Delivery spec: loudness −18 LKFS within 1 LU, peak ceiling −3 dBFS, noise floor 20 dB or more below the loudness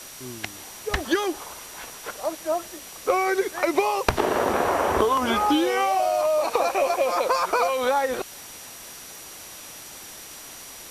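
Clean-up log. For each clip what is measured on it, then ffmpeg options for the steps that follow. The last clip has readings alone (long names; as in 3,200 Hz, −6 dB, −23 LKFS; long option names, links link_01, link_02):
interfering tone 5,800 Hz; level of the tone −47 dBFS; background noise floor −42 dBFS; target noise floor −44 dBFS; integrated loudness −23.5 LKFS; sample peak −8.0 dBFS; target loudness −18.0 LKFS
→ -af "bandreject=frequency=5800:width=30"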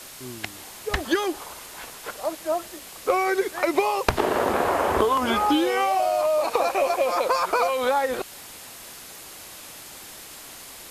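interfering tone none found; background noise floor −42 dBFS; target noise floor −44 dBFS
→ -af "afftdn=noise_reduction=6:noise_floor=-42"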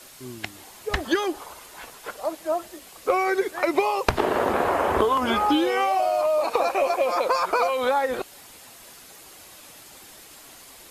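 background noise floor −47 dBFS; integrated loudness −23.5 LKFS; sample peak −7.5 dBFS; target loudness −18.0 LKFS
→ -af "volume=5.5dB,alimiter=limit=-3dB:level=0:latency=1"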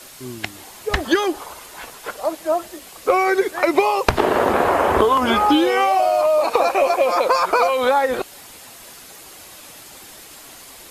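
integrated loudness −18.0 LKFS; sample peak −3.0 dBFS; background noise floor −42 dBFS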